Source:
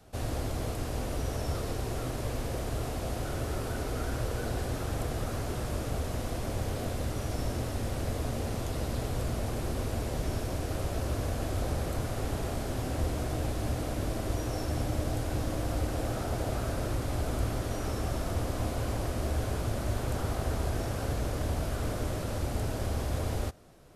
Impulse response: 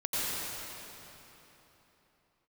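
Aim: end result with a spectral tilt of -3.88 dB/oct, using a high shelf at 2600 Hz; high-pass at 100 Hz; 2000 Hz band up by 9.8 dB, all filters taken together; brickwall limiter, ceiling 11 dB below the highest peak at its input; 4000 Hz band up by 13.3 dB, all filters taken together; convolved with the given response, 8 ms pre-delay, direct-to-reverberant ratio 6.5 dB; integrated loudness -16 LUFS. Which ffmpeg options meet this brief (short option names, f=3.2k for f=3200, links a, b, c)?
-filter_complex "[0:a]highpass=100,equalizer=f=2k:t=o:g=7.5,highshelf=f=2.6k:g=6.5,equalizer=f=4k:t=o:g=9,alimiter=level_in=4dB:limit=-24dB:level=0:latency=1,volume=-4dB,asplit=2[a][b];[1:a]atrim=start_sample=2205,adelay=8[c];[b][c]afir=irnorm=-1:irlink=0,volume=-15.5dB[d];[a][d]amix=inputs=2:normalize=0,volume=19dB"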